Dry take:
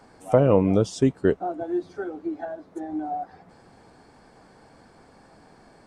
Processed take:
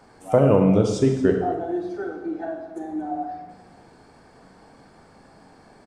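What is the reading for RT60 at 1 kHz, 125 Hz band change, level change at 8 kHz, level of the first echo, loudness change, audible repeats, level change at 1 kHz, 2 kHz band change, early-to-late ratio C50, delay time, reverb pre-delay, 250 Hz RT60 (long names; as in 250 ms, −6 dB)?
0.95 s, +3.0 dB, +1.5 dB, −16.0 dB, +2.0 dB, 1, +2.0 dB, +2.0 dB, 5.0 dB, 229 ms, 22 ms, 1.1 s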